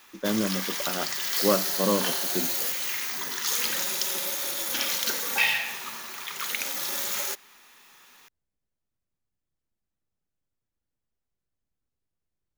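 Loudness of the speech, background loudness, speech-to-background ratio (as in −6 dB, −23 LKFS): −29.5 LKFS, −26.5 LKFS, −3.0 dB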